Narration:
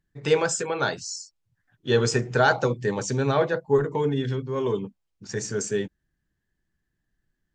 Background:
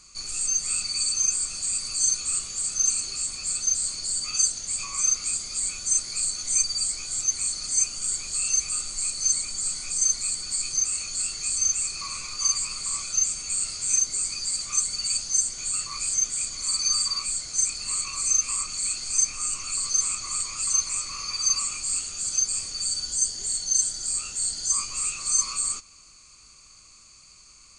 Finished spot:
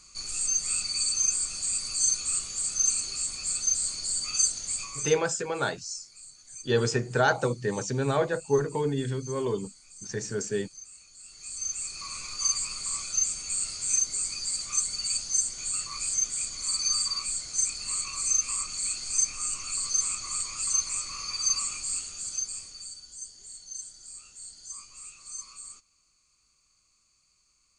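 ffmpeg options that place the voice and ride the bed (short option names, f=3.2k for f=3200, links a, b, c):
-filter_complex "[0:a]adelay=4800,volume=-3.5dB[a];[1:a]volume=16.5dB,afade=t=out:st=4.7:d=0.53:silence=0.105925,afade=t=in:st=11.22:d=1.09:silence=0.11885,afade=t=out:st=21.7:d=1.3:silence=0.199526[b];[a][b]amix=inputs=2:normalize=0"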